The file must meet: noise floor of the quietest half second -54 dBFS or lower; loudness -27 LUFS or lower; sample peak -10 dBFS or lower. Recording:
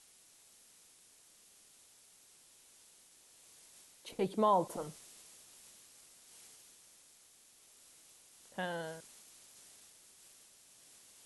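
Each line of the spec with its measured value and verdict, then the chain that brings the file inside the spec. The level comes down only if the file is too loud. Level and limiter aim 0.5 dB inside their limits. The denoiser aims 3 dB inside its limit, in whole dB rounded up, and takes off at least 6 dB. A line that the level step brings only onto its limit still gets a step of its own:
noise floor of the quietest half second -63 dBFS: OK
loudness -36.0 LUFS: OK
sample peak -19.0 dBFS: OK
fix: none

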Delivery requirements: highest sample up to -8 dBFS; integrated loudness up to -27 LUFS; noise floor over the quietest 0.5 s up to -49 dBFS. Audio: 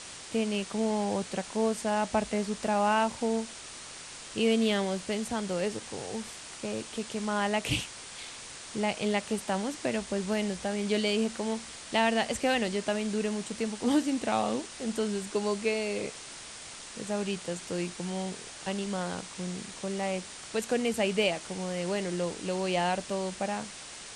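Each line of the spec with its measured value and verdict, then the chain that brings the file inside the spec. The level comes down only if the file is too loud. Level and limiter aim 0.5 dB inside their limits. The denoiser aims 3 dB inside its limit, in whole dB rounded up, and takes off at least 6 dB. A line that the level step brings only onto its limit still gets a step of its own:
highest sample -14.0 dBFS: OK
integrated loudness -31.0 LUFS: OK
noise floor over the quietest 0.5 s -45 dBFS: fail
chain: denoiser 7 dB, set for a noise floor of -45 dBFS

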